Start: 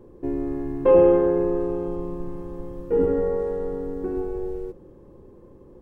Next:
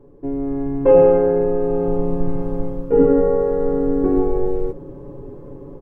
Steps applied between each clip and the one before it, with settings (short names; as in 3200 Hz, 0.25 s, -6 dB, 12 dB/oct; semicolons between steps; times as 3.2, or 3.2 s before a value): high shelf 2000 Hz -11 dB; comb 7.1 ms, depth 78%; AGC gain up to 12.5 dB; gain -1 dB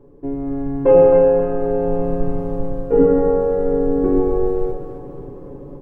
split-band echo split 450 Hz, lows 0.106 s, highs 0.266 s, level -7 dB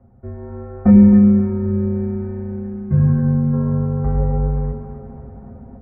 bell 370 Hz +11 dB 0.27 oct; mistuned SSB -320 Hz 550–2300 Hz; spectral gain 0.9–3.54, 390–1400 Hz -9 dB; gain +5.5 dB